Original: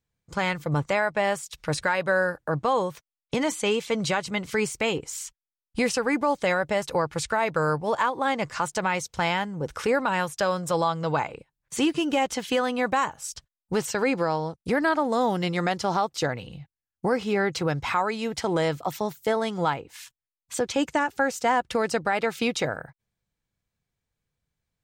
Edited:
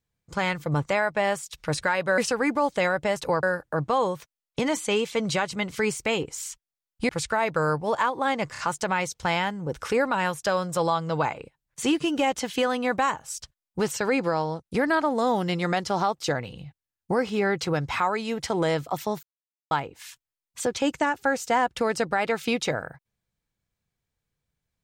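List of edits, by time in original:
0:05.84–0:07.09: move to 0:02.18
0:08.52: stutter 0.03 s, 3 plays
0:19.17–0:19.65: silence

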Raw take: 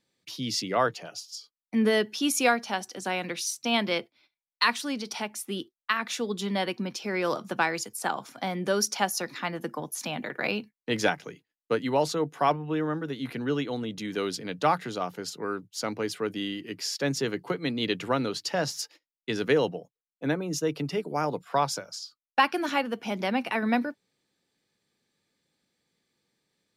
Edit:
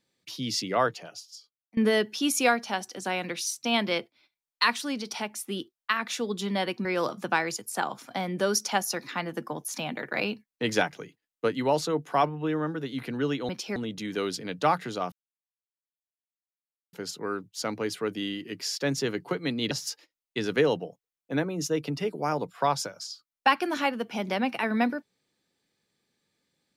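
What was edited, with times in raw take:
0:00.84–0:01.77: fade out, to −22.5 dB
0:06.85–0:07.12: move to 0:13.76
0:15.12: splice in silence 1.81 s
0:17.90–0:18.63: remove

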